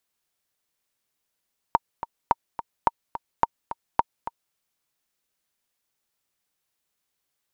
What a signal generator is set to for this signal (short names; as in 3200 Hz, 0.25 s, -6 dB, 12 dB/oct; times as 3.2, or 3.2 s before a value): metronome 214 bpm, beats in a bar 2, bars 5, 930 Hz, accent 12.5 dB -4.5 dBFS